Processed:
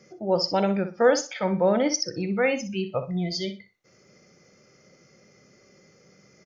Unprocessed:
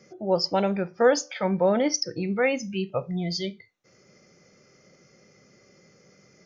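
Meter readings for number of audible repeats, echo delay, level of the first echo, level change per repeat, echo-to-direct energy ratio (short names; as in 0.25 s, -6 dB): 2, 61 ms, -11.0 dB, -13.0 dB, -11.0 dB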